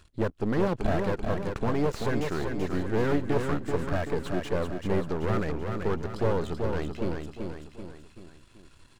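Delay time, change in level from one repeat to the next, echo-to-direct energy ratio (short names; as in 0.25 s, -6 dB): 0.384 s, -6.0 dB, -4.0 dB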